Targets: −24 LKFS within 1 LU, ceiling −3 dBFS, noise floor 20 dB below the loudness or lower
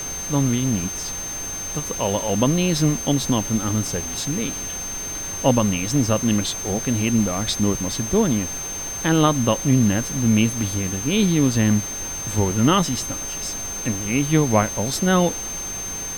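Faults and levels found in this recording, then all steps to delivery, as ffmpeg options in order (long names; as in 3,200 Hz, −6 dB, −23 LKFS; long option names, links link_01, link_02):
interfering tone 6,300 Hz; level of the tone −28 dBFS; background noise floor −30 dBFS; target noise floor −41 dBFS; integrated loudness −21.0 LKFS; sample peak −3.5 dBFS; target loudness −24.0 LKFS
→ -af "bandreject=frequency=6300:width=30"
-af "afftdn=noise_reduction=11:noise_floor=-30"
-af "volume=-3dB"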